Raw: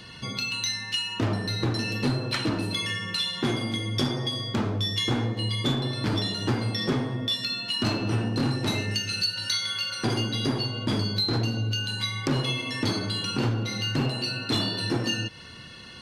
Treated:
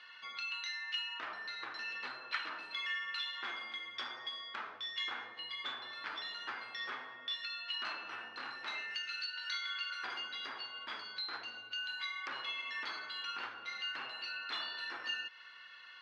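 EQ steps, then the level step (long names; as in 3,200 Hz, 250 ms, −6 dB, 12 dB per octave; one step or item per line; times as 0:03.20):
four-pole ladder band-pass 1,800 Hz, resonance 30%
high-frequency loss of the air 54 metres
+5.0 dB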